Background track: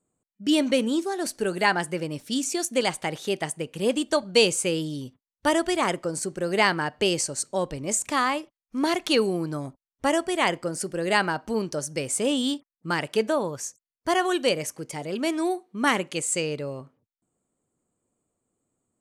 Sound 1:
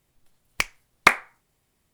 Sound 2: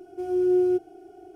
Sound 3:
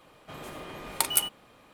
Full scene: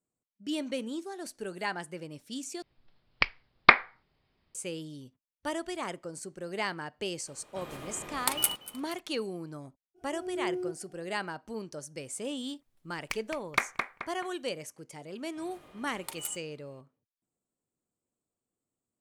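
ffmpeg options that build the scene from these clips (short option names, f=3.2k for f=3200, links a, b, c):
-filter_complex "[1:a]asplit=2[a][b];[3:a]asplit=2[c][d];[0:a]volume=-12dB[e];[a]aresample=11025,aresample=44100[f];[c]asplit=5[g][h][i][j][k];[h]adelay=237,afreqshift=72,volume=-19dB[l];[i]adelay=474,afreqshift=144,volume=-25.9dB[m];[j]adelay=711,afreqshift=216,volume=-32.9dB[n];[k]adelay=948,afreqshift=288,volume=-39.8dB[o];[g][l][m][n][o]amix=inputs=5:normalize=0[p];[b]asplit=2[q][r];[r]adelay=215,lowpass=f=2.8k:p=1,volume=-4dB,asplit=2[s][t];[t]adelay=215,lowpass=f=2.8k:p=1,volume=0.44,asplit=2[u][v];[v]adelay=215,lowpass=f=2.8k:p=1,volume=0.44,asplit=2[w][x];[x]adelay=215,lowpass=f=2.8k:p=1,volume=0.44,asplit=2[y][z];[z]adelay=215,lowpass=f=2.8k:p=1,volume=0.44,asplit=2[aa][ab];[ab]adelay=215,lowpass=f=2.8k:p=1,volume=0.44[ac];[q][s][u][w][y][aa][ac]amix=inputs=7:normalize=0[ad];[e]asplit=2[ae][af];[ae]atrim=end=2.624[ag];[f]atrim=end=1.93,asetpts=PTS-STARTPTS,volume=-1dB[ah];[af]atrim=start=4.546[ai];[p]atrim=end=1.73,asetpts=PTS-STARTPTS,volume=-2.5dB,afade=t=in:d=0.004:c=hsin,afade=t=out:st=1.726:d=0.004:c=hsin,adelay=7270[aj];[2:a]atrim=end=1.35,asetpts=PTS-STARTPTS,volume=-13dB,afade=t=in:d=0.05,afade=t=out:st=1.3:d=0.05,adelay=438354S[ak];[ad]atrim=end=1.93,asetpts=PTS-STARTPTS,volume=-11.5dB,afade=t=in:d=0.004:c=hsin,afade=t=out:st=1.926:d=0.004:c=hsin,adelay=12510[al];[d]atrim=end=1.73,asetpts=PTS-STARTPTS,volume=-14.5dB,afade=t=in:d=0.004:c=hsin,afade=t=out:st=1.726:d=0.004:c=hsin,adelay=665028S[am];[ag][ah]acrossfade=d=0.004:c1=hsin:c2=hsin[an];[an][ai]acrossfade=d=0.004:c1=hsin:c2=hsin[ao];[ao][aj][ak][al][am]amix=inputs=5:normalize=0"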